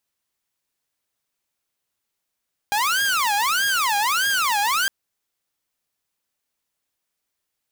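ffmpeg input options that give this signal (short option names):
-f lavfi -i "aevalsrc='0.158*(2*mod((1220*t-410/(2*PI*1.6)*sin(2*PI*1.6*t)),1)-1)':d=2.16:s=44100"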